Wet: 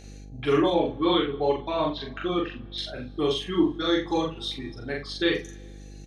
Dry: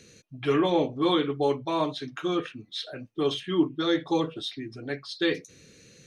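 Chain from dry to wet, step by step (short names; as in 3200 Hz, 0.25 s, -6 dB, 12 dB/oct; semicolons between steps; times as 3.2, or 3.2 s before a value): 0.7–2.78 LPF 4500 Hz 24 dB/oct; reverb removal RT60 1.4 s; buzz 50 Hz, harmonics 16, -48 dBFS -5 dB/oct; loudspeakers at several distances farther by 14 m -1 dB, 29 m -10 dB; plate-style reverb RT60 2.3 s, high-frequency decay 0.85×, DRR 20 dB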